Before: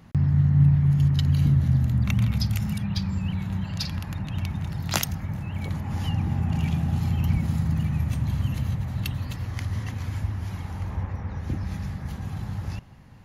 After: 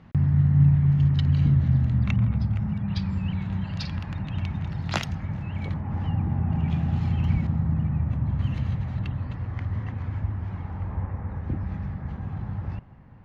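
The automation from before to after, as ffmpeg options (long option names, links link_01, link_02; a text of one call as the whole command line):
ffmpeg -i in.wav -af "asetnsamples=nb_out_samples=441:pad=0,asendcmd='2.16 lowpass f 1400;2.88 lowpass f 3500;5.74 lowpass f 1600;6.7 lowpass f 3300;7.47 lowpass f 1400;8.39 lowpass f 3200;8.99 lowpass f 1700',lowpass=3200" out.wav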